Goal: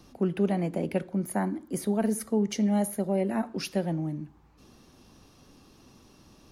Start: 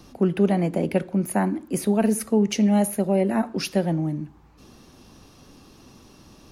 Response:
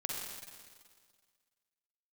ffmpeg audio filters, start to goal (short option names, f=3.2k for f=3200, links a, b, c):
-filter_complex "[0:a]asettb=1/sr,asplit=3[a][b][c];[a]atrim=end=1.094[d];[b]atrim=start=1.09:end=3.18,asetpts=PTS-STARTPTS,afade=t=in:d=0.004:c=qsin,afade=t=out:st=2.086:d=0.004:c=qsin,bandreject=f=2.6k:w=5.7[e];[c]atrim=start=3.176[f];[d][e]acrossfade=d=0.004:c1=hsin:c2=qsin[g];[g][f]acrossfade=d=0.004:c1=qsin:c2=hsin,volume=-6dB"